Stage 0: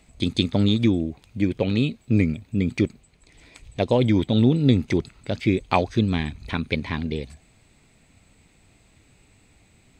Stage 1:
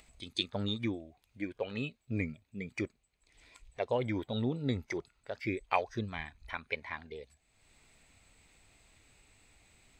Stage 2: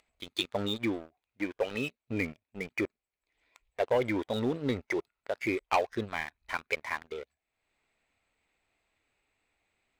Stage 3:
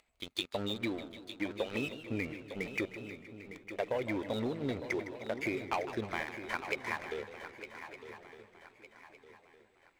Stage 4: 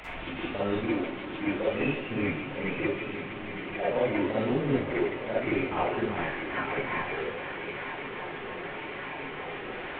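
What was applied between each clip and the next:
spectral noise reduction 11 dB; peaking EQ 170 Hz -10 dB 2.8 oct; upward compressor, threshold -43 dBFS; trim -6.5 dB
tone controls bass -11 dB, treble -12 dB; waveshaping leveller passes 3; trim -3.5 dB
compression, threshold -31 dBFS, peak gain reduction 9 dB; shuffle delay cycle 1209 ms, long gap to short 3:1, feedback 36%, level -11.5 dB; modulated delay 155 ms, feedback 64%, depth 148 cents, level -13 dB
one-bit delta coder 16 kbps, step -39 dBFS; reverberation RT60 0.35 s, pre-delay 42 ms, DRR -7.5 dB

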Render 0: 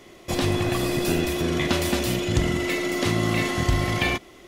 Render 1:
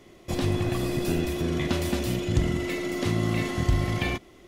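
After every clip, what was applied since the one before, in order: bass shelf 360 Hz +7 dB; trim -7 dB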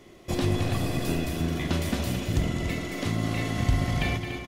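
gain riding within 4 dB 2 s; loudspeakers at several distances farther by 74 m -9 dB, 99 m -9 dB; trim -1.5 dB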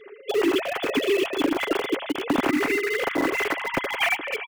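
formants replaced by sine waves; comb 7.3 ms, depth 32%; in parallel at -11 dB: bit crusher 4-bit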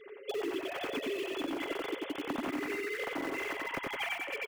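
feedback delay 92 ms, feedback 18%, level -3 dB; compression 4:1, threshold -28 dBFS, peak gain reduction 11 dB; trim -6 dB

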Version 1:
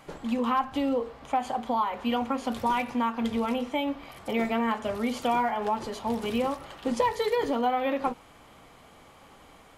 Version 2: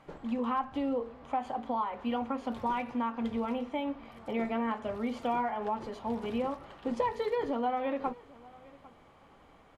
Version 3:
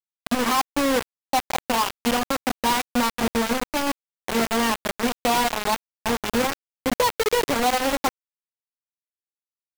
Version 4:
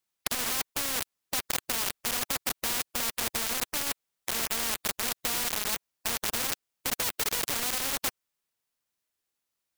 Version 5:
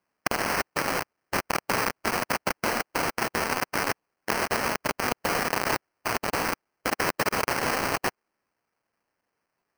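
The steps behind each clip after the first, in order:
low-pass 1.9 kHz 6 dB/octave; delay 800 ms -22.5 dB; trim -4.5 dB
bit crusher 5-bit; trim +8 dB
spectrum-flattening compressor 4:1
sample-rate reducer 3.6 kHz, jitter 0%; bass shelf 110 Hz -10.5 dB; trim +4 dB

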